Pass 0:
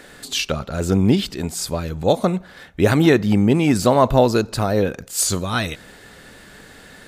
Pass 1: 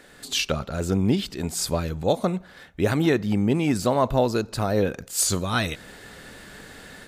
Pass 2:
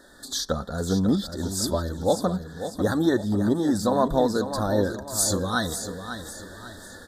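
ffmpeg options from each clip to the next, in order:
-af "dynaudnorm=f=160:g=3:m=2.37,volume=0.422"
-filter_complex "[0:a]asuperstop=centerf=2500:order=12:qfactor=1.6,asplit=2[s0][s1];[s1]aecho=0:1:547|1094|1641|2188:0.335|0.134|0.0536|0.0214[s2];[s0][s2]amix=inputs=2:normalize=0,flanger=delay=3.2:depth=1:regen=-37:speed=0.6:shape=sinusoidal,volume=1.41"

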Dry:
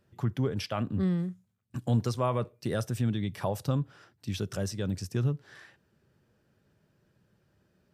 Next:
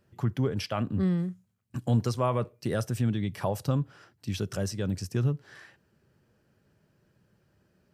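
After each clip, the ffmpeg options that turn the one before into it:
-af "bandreject=f=3600:w=17,volume=1.19"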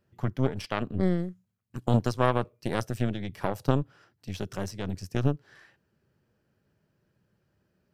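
-af "equalizer=f=8700:t=o:w=0.91:g=-3.5,aeval=exprs='0.211*(cos(1*acos(clip(val(0)/0.211,-1,1)))-cos(1*PI/2))+0.0473*(cos(3*acos(clip(val(0)/0.211,-1,1)))-cos(3*PI/2))+0.0237*(cos(4*acos(clip(val(0)/0.211,-1,1)))-cos(4*PI/2))':c=same,volume=1.78"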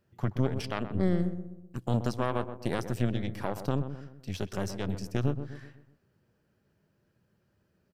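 -filter_complex "[0:a]alimiter=limit=0.178:level=0:latency=1:release=162,asplit=2[s0][s1];[s1]adelay=126,lowpass=f=1100:p=1,volume=0.355,asplit=2[s2][s3];[s3]adelay=126,lowpass=f=1100:p=1,volume=0.48,asplit=2[s4][s5];[s5]adelay=126,lowpass=f=1100:p=1,volume=0.48,asplit=2[s6][s7];[s7]adelay=126,lowpass=f=1100:p=1,volume=0.48,asplit=2[s8][s9];[s9]adelay=126,lowpass=f=1100:p=1,volume=0.48[s10];[s2][s4][s6][s8][s10]amix=inputs=5:normalize=0[s11];[s0][s11]amix=inputs=2:normalize=0"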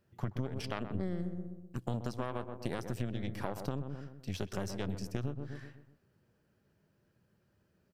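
-af "acompressor=threshold=0.0316:ratio=6,volume=0.891"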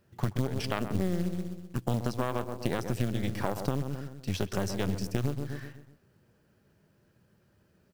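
-af "acrusher=bits=5:mode=log:mix=0:aa=0.000001,volume=2.11"

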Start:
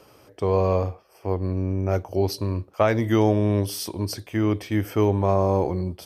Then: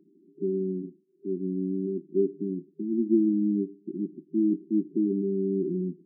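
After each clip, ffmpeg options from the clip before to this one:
-af "afftfilt=real='re*between(b*sr/4096,160,400)':imag='im*between(b*sr/4096,160,400)':win_size=4096:overlap=0.75"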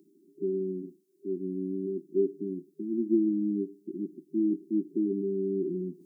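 -af "bass=f=250:g=-8,treble=f=4000:g=14,areverse,acompressor=mode=upward:threshold=0.00355:ratio=2.5,areverse"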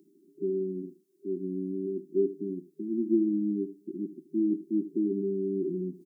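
-af "aecho=1:1:76:0.15"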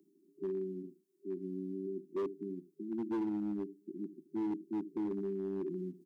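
-filter_complex "[0:a]acrossover=split=120|200[s0][s1][s2];[s0]acrusher=bits=5:mode=log:mix=0:aa=0.000001[s3];[s3][s1][s2]amix=inputs=3:normalize=0,asoftclip=type=hard:threshold=0.0596,volume=0.447"

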